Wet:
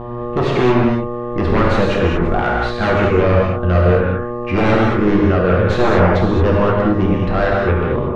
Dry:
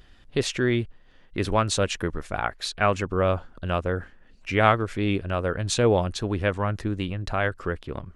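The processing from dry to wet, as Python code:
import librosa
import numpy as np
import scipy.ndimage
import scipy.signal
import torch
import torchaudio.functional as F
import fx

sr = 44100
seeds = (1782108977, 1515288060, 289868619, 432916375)

y = fx.tracing_dist(x, sr, depth_ms=0.058)
y = fx.dmg_buzz(y, sr, base_hz=120.0, harmonics=10, level_db=-41.0, tilt_db=-3, odd_only=False)
y = fx.fold_sine(y, sr, drive_db=16, ceiling_db=-4.0)
y = scipy.signal.sosfilt(scipy.signal.butter(2, 1700.0, 'lowpass', fs=sr, output='sos'), y)
y = fx.rev_gated(y, sr, seeds[0], gate_ms=250, shape='flat', drr_db=-3.5)
y = F.gain(torch.from_numpy(y), -8.5).numpy()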